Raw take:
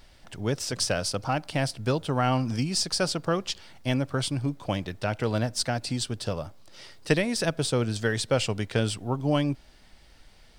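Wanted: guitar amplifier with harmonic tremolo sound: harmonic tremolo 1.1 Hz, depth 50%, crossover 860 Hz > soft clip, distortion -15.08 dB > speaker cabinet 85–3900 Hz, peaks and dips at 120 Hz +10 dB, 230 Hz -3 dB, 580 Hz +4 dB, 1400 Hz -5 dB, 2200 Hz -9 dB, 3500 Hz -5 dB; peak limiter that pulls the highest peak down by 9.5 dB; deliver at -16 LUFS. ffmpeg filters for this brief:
-filter_complex "[0:a]alimiter=limit=-19.5dB:level=0:latency=1,acrossover=split=860[a][b];[a]aeval=exprs='val(0)*(1-0.5/2+0.5/2*cos(2*PI*1.1*n/s))':c=same[c];[b]aeval=exprs='val(0)*(1-0.5/2-0.5/2*cos(2*PI*1.1*n/s))':c=same[d];[c][d]amix=inputs=2:normalize=0,asoftclip=threshold=-26.5dB,highpass=85,equalizer=f=120:t=q:w=4:g=10,equalizer=f=230:t=q:w=4:g=-3,equalizer=f=580:t=q:w=4:g=4,equalizer=f=1.4k:t=q:w=4:g=-5,equalizer=f=2.2k:t=q:w=4:g=-9,equalizer=f=3.5k:t=q:w=4:g=-5,lowpass=f=3.9k:w=0.5412,lowpass=f=3.9k:w=1.3066,volume=17.5dB"

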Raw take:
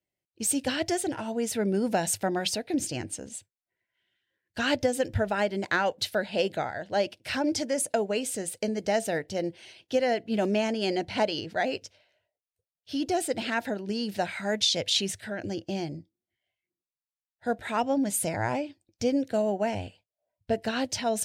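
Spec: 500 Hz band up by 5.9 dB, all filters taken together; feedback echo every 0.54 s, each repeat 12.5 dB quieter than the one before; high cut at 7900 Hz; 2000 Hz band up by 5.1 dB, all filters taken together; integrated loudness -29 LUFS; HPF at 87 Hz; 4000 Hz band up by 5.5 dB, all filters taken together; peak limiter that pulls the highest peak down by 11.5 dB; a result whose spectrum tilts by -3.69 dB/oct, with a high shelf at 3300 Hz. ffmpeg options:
-af "highpass=87,lowpass=7.9k,equalizer=f=500:t=o:g=7,equalizer=f=2k:t=o:g=5.5,highshelf=f=3.3k:g=-3.5,equalizer=f=4k:t=o:g=7.5,alimiter=limit=-18dB:level=0:latency=1,aecho=1:1:540|1080|1620:0.237|0.0569|0.0137,volume=-1dB"

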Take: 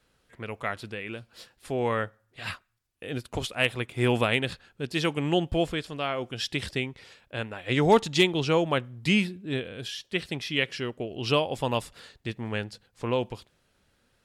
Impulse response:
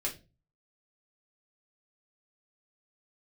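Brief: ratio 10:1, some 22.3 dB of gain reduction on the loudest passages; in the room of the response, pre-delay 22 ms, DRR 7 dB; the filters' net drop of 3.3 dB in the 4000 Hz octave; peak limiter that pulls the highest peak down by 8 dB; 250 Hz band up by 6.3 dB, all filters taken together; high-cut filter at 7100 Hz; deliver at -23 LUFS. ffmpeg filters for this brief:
-filter_complex "[0:a]lowpass=7.1k,equalizer=f=250:t=o:g=8.5,equalizer=f=4k:t=o:g=-4.5,acompressor=threshold=-35dB:ratio=10,alimiter=level_in=8dB:limit=-24dB:level=0:latency=1,volume=-8dB,asplit=2[a][b];[1:a]atrim=start_sample=2205,adelay=22[c];[b][c]afir=irnorm=-1:irlink=0,volume=-10dB[d];[a][d]amix=inputs=2:normalize=0,volume=19.5dB"

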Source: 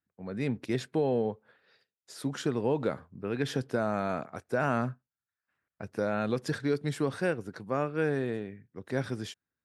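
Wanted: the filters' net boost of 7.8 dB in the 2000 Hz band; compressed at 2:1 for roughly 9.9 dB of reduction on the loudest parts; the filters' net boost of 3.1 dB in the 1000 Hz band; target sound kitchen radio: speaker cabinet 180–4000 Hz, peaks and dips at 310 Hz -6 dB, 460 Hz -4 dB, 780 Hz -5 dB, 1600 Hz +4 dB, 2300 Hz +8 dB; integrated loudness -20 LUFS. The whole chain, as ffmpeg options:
-af "equalizer=f=1k:t=o:g=4.5,equalizer=f=2k:t=o:g=3,acompressor=threshold=-41dB:ratio=2,highpass=180,equalizer=f=310:t=q:w=4:g=-6,equalizer=f=460:t=q:w=4:g=-4,equalizer=f=780:t=q:w=4:g=-5,equalizer=f=1.6k:t=q:w=4:g=4,equalizer=f=2.3k:t=q:w=4:g=8,lowpass=f=4k:w=0.5412,lowpass=f=4k:w=1.3066,volume=21.5dB"

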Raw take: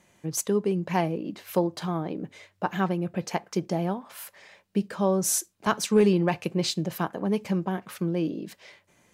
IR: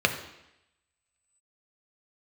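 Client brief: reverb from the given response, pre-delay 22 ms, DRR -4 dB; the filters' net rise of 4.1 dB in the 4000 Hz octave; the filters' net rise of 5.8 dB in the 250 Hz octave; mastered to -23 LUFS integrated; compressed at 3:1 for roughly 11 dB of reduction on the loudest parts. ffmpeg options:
-filter_complex "[0:a]equalizer=f=250:t=o:g=9,equalizer=f=4k:t=o:g=5,acompressor=threshold=-25dB:ratio=3,asplit=2[a][b];[1:a]atrim=start_sample=2205,adelay=22[c];[b][c]afir=irnorm=-1:irlink=0,volume=-10.5dB[d];[a][d]amix=inputs=2:normalize=0,volume=1.5dB"

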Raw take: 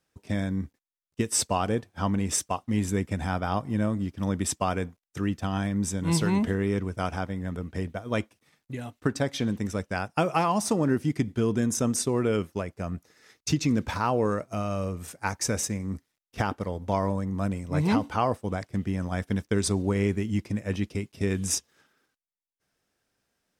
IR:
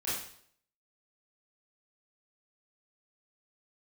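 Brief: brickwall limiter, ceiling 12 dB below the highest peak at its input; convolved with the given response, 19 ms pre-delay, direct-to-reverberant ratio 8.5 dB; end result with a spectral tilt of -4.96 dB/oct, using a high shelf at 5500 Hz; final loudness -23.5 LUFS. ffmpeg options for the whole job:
-filter_complex "[0:a]highshelf=f=5.5k:g=6,alimiter=limit=-19.5dB:level=0:latency=1,asplit=2[a][b];[1:a]atrim=start_sample=2205,adelay=19[c];[b][c]afir=irnorm=-1:irlink=0,volume=-13.5dB[d];[a][d]amix=inputs=2:normalize=0,volume=7.5dB"

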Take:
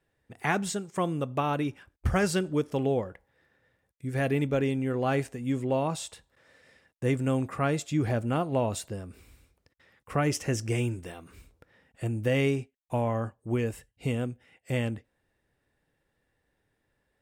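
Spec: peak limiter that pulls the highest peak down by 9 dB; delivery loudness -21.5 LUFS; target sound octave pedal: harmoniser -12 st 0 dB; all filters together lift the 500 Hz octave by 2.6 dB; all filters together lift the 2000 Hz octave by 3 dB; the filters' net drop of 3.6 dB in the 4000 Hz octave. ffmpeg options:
-filter_complex "[0:a]equalizer=f=500:t=o:g=3,equalizer=f=2k:t=o:g=5.5,equalizer=f=4k:t=o:g=-8,alimiter=limit=-18.5dB:level=0:latency=1,asplit=2[a][b];[b]asetrate=22050,aresample=44100,atempo=2,volume=0dB[c];[a][c]amix=inputs=2:normalize=0,volume=6dB"

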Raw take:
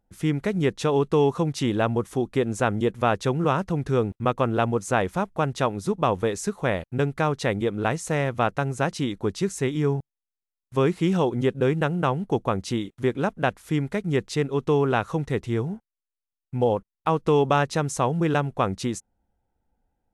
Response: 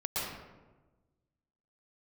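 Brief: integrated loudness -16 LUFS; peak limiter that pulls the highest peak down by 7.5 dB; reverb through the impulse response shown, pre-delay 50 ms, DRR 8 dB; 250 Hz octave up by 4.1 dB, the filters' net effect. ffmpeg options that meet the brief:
-filter_complex "[0:a]equalizer=f=250:t=o:g=5.5,alimiter=limit=-14.5dB:level=0:latency=1,asplit=2[a][b];[1:a]atrim=start_sample=2205,adelay=50[c];[b][c]afir=irnorm=-1:irlink=0,volume=-14dB[d];[a][d]amix=inputs=2:normalize=0,volume=9.5dB"

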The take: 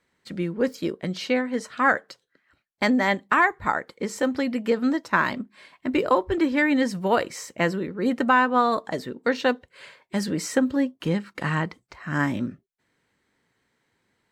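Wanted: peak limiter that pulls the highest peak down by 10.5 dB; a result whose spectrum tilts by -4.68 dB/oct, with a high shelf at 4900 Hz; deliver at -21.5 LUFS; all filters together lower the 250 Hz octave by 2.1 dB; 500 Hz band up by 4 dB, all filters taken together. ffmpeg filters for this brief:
-af "equalizer=f=250:t=o:g=-4,equalizer=f=500:t=o:g=5.5,highshelf=f=4.9k:g=-6.5,volume=6dB,alimiter=limit=-9.5dB:level=0:latency=1"

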